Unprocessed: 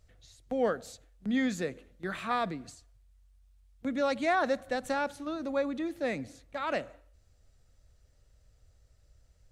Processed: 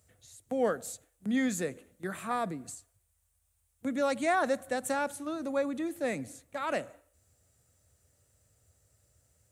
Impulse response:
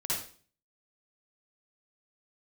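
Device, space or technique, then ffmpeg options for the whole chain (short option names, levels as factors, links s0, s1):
budget condenser microphone: -filter_complex "[0:a]asettb=1/sr,asplit=3[s0][s1][s2];[s0]atrim=end=2.074[s3];[s1]atrim=start=2.07:end=2.68,asetpts=PTS-STARTPTS,afade=t=in:d=0.004:c=qsin,afade=t=out:st=0.606:d=0.004:c=qsin,equalizer=f=3000:t=o:w=2.2:g=-5.5[s4];[s2]atrim=start=2.676[s5];[s3][s4]acrossfade=d=0.004:c1=hsin:c2=qsin[s6];[s6][s5]acrossfade=d=0.004:c1=qsin:c2=hsin,highpass=f=82:w=0.5412,highpass=f=82:w=1.3066,highshelf=f=6500:t=q:w=1.5:g=10"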